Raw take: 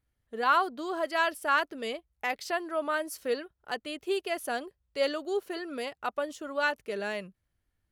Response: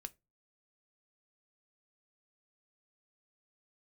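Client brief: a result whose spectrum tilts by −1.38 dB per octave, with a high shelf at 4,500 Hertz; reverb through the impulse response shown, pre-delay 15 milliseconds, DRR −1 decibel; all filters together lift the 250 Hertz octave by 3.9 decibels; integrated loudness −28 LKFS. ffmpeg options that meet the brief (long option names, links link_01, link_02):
-filter_complex "[0:a]equalizer=frequency=250:width_type=o:gain=5.5,highshelf=frequency=4500:gain=-7.5,asplit=2[link_01][link_02];[1:a]atrim=start_sample=2205,adelay=15[link_03];[link_02][link_03]afir=irnorm=-1:irlink=0,volume=6dB[link_04];[link_01][link_04]amix=inputs=2:normalize=0,volume=-0.5dB"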